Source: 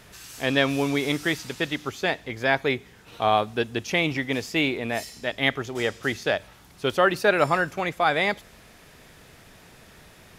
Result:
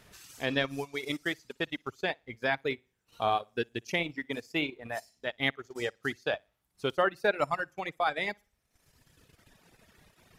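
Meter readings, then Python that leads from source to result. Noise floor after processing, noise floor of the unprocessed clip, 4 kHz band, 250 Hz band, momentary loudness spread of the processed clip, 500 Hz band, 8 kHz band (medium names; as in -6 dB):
-77 dBFS, -52 dBFS, -7.5 dB, -9.5 dB, 8 LU, -7.5 dB, -12.0 dB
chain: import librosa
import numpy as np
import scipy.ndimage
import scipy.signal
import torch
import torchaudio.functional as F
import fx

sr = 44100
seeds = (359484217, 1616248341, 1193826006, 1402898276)

y = fx.room_flutter(x, sr, wall_m=10.0, rt60_s=0.37)
y = fx.dereverb_blind(y, sr, rt60_s=1.7)
y = fx.transient(y, sr, attack_db=3, sustain_db=-11)
y = F.gain(torch.from_numpy(y), -8.0).numpy()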